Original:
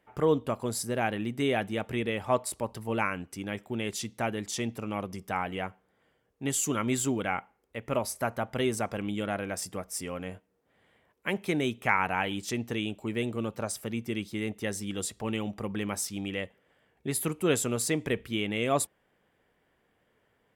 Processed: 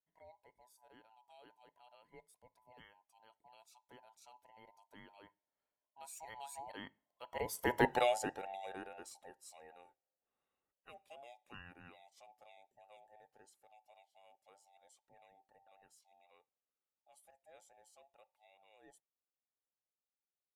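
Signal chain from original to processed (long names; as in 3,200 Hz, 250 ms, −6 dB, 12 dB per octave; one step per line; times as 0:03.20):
frequency inversion band by band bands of 1,000 Hz
source passing by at 0:07.87, 24 m/s, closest 2.4 metres
level +3 dB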